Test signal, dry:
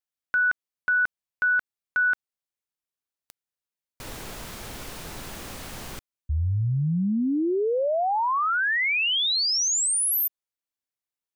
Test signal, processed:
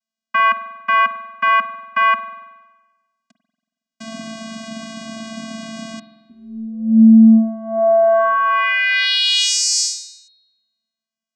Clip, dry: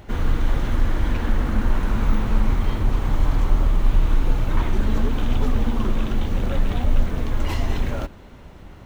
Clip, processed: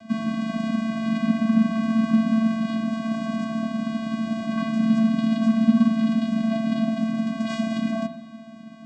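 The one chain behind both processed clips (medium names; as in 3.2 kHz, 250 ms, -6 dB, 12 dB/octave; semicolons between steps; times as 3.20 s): treble shelf 3 kHz +10 dB; vocoder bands 8, square 223 Hz; spring tank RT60 1.2 s, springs 46 ms, chirp 30 ms, DRR 8.5 dB; trim +7.5 dB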